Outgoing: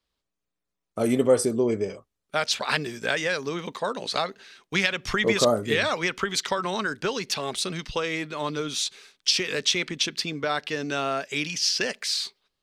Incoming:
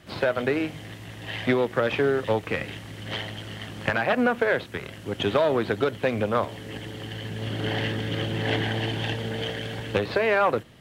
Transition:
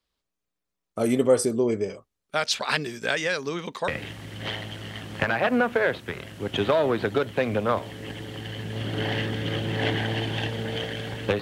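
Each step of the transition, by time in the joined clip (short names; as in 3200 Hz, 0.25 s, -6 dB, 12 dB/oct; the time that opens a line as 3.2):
outgoing
3.88 switch to incoming from 2.54 s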